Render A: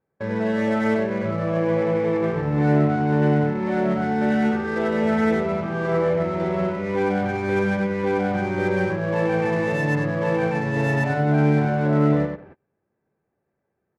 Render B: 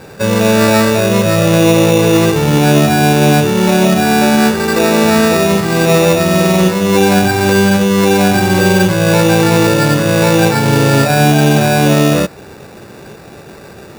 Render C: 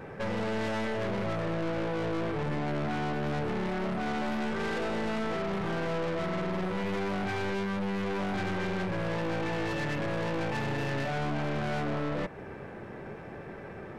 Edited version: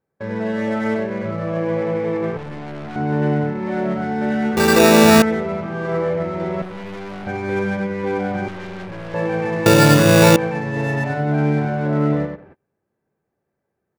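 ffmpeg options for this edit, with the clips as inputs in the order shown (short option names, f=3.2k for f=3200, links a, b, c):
-filter_complex "[2:a]asplit=3[a][b][c];[1:a]asplit=2[d][e];[0:a]asplit=6[f][g][h][i][j][k];[f]atrim=end=2.372[l];[a]atrim=start=2.368:end=2.962[m];[g]atrim=start=2.958:end=4.572[n];[d]atrim=start=4.568:end=5.222[o];[h]atrim=start=5.218:end=6.622[p];[b]atrim=start=6.618:end=7.272[q];[i]atrim=start=7.268:end=8.482[r];[c]atrim=start=8.478:end=9.142[s];[j]atrim=start=9.138:end=9.662[t];[e]atrim=start=9.658:end=10.362[u];[k]atrim=start=10.358[v];[l][m]acrossfade=d=0.004:c1=hsin:c2=hsin[w];[w][n]acrossfade=d=0.004:c1=hsin:c2=hsin[x];[x][o]acrossfade=d=0.004:c1=hsin:c2=hsin[y];[y][p]acrossfade=d=0.004:c1=hsin:c2=hsin[z];[z][q]acrossfade=d=0.004:c1=hsin:c2=hsin[aa];[aa][r]acrossfade=d=0.004:c1=hsin:c2=hsin[ab];[ab][s]acrossfade=d=0.004:c1=hsin:c2=hsin[ac];[ac][t]acrossfade=d=0.004:c1=hsin:c2=hsin[ad];[ad][u]acrossfade=d=0.004:c1=hsin:c2=hsin[ae];[ae][v]acrossfade=d=0.004:c1=hsin:c2=hsin"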